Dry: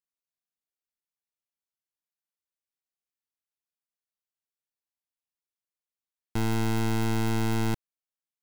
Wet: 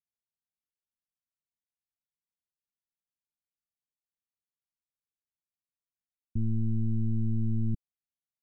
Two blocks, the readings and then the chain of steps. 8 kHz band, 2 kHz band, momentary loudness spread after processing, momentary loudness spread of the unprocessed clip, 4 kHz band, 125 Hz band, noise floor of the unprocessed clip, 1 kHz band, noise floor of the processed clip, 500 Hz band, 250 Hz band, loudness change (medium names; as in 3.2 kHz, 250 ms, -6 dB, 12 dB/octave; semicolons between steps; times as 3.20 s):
under -35 dB, under -40 dB, 6 LU, 6 LU, under -40 dB, 0.0 dB, under -85 dBFS, under -40 dB, under -85 dBFS, under -15 dB, -3.5 dB, -3.0 dB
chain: inverse Chebyshev low-pass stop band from 620 Hz, stop band 50 dB